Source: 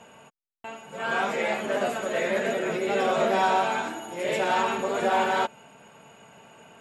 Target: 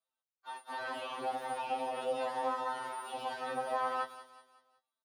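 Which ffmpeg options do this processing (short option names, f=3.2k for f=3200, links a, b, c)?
-filter_complex "[0:a]highshelf=f=3.4k:g=8,agate=range=-41dB:threshold=-40dB:ratio=16:detection=peak,acrossover=split=220|1800[a][b][c];[a]acrusher=bits=6:mix=0:aa=0.000001[d];[d][b][c]amix=inputs=3:normalize=0,acompressor=threshold=-32dB:ratio=8,asetrate=59535,aresample=44100,asplit=2[e][f];[f]aecho=0:1:186|372|558|744:0.158|0.0682|0.0293|0.0126[g];[e][g]amix=inputs=2:normalize=0,acrossover=split=2800[h][i];[i]acompressor=threshold=-56dB:ratio=4:attack=1:release=60[j];[h][j]amix=inputs=2:normalize=0,equalizer=f=2.1k:w=6.3:g=-14.5,asplit=2[k][l];[l]adelay=17,volume=-13.5dB[m];[k][m]amix=inputs=2:normalize=0,asplit=3[n][o][p];[o]asetrate=52444,aresample=44100,atempo=0.840896,volume=-16dB[q];[p]asetrate=55563,aresample=44100,atempo=0.793701,volume=-15dB[r];[n][q][r]amix=inputs=3:normalize=0,highpass=59,afftfilt=real='re*2.45*eq(mod(b,6),0)':imag='im*2.45*eq(mod(b,6),0)':win_size=2048:overlap=0.75"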